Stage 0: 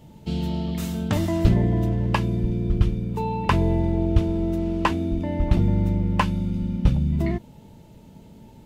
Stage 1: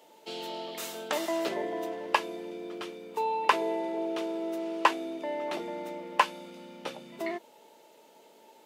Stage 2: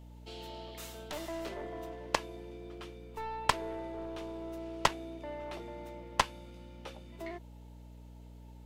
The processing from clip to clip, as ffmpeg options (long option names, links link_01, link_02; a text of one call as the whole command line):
ffmpeg -i in.wav -af "highpass=frequency=420:width=0.5412,highpass=frequency=420:width=1.3066" out.wav
ffmpeg -i in.wav -af "aeval=exprs='0.501*(cos(1*acos(clip(val(0)/0.501,-1,1)))-cos(1*PI/2))+0.2*(cos(4*acos(clip(val(0)/0.501,-1,1)))-cos(4*PI/2))+0.178*(cos(6*acos(clip(val(0)/0.501,-1,1)))-cos(6*PI/2))+0.126*(cos(7*acos(clip(val(0)/0.501,-1,1)))-cos(7*PI/2))+0.0251*(cos(8*acos(clip(val(0)/0.501,-1,1)))-cos(8*PI/2))':channel_layout=same,aeval=exprs='val(0)+0.00631*(sin(2*PI*60*n/s)+sin(2*PI*2*60*n/s)/2+sin(2*PI*3*60*n/s)/3+sin(2*PI*4*60*n/s)/4+sin(2*PI*5*60*n/s)/5)':channel_layout=same,volume=-5.5dB" out.wav